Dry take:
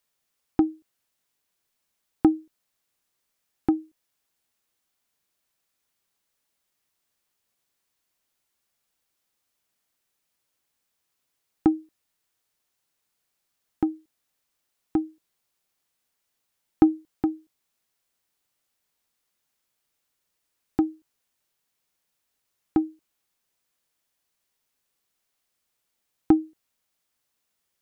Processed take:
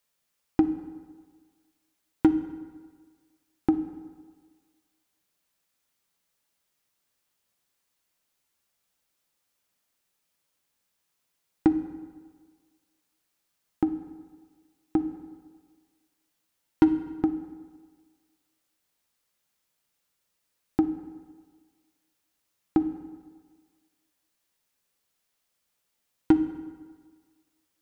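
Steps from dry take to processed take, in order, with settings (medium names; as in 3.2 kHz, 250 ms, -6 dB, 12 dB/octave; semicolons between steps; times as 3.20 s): overload inside the chain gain 10.5 dB; on a send: reverberation RT60 1.6 s, pre-delay 3 ms, DRR 8 dB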